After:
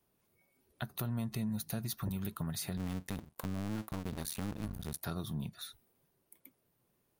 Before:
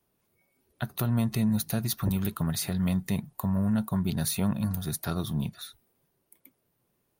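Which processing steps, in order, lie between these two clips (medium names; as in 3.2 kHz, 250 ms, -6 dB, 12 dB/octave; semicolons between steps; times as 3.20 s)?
2.77–5.03 s: cycle switcher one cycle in 2, muted; compression 2:1, threshold -38 dBFS, peak gain reduction 9 dB; trim -2 dB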